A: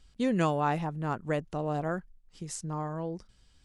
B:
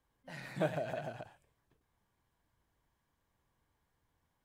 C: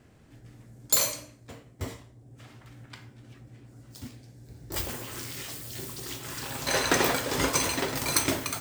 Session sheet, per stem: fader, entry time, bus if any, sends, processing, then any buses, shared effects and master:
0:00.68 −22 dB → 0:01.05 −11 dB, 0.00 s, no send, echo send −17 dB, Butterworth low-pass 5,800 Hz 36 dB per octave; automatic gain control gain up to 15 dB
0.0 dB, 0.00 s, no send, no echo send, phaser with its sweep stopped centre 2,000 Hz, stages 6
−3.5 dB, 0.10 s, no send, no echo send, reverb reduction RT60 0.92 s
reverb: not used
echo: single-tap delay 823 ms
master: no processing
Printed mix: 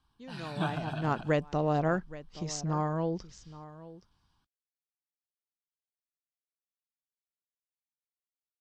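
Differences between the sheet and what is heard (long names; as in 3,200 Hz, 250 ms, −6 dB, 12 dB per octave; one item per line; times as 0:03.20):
stem B 0.0 dB → +7.0 dB
stem C: muted
master: extra low-pass with resonance 7,400 Hz, resonance Q 2.6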